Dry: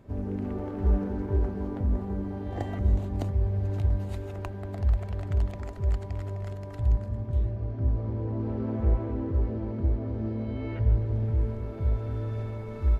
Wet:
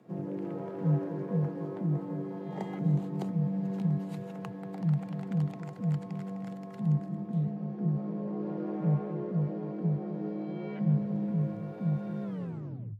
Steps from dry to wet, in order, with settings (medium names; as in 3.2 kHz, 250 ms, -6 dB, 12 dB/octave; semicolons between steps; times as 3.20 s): tape stop on the ending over 0.76 s; frequency shift +94 Hz; trim -4.5 dB